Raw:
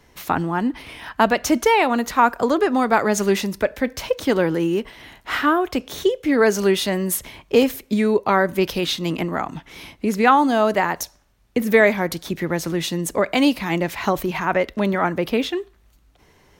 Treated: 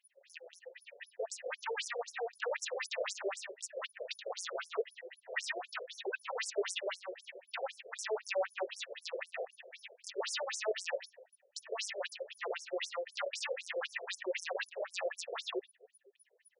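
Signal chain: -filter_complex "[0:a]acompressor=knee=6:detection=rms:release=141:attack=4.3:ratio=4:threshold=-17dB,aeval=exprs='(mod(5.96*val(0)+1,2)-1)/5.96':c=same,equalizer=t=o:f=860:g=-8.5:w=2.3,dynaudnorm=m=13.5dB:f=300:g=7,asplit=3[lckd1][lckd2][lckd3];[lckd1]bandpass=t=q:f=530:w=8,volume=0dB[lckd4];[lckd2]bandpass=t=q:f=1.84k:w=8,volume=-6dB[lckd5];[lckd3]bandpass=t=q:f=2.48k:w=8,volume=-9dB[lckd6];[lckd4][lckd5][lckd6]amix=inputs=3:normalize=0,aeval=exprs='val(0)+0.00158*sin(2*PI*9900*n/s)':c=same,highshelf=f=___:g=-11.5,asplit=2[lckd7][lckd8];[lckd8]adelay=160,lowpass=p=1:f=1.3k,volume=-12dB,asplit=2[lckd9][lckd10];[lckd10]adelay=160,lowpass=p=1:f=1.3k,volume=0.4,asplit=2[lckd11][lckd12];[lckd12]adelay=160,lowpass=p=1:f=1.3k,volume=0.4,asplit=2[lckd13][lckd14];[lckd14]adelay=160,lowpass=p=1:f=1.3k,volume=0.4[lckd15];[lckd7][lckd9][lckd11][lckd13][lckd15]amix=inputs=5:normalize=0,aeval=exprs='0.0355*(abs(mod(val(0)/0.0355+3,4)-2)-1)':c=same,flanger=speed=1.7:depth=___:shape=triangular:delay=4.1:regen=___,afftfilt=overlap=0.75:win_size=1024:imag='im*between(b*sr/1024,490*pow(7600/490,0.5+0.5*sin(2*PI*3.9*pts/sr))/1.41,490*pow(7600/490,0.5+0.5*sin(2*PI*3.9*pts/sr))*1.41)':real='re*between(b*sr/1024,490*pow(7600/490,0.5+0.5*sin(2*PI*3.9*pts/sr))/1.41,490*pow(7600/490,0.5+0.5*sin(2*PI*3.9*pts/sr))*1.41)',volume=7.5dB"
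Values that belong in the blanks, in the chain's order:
10k, 1.8, -36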